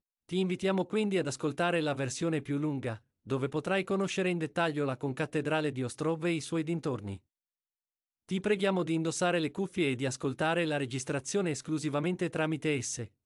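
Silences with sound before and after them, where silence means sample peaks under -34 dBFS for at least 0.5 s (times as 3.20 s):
7.14–8.31 s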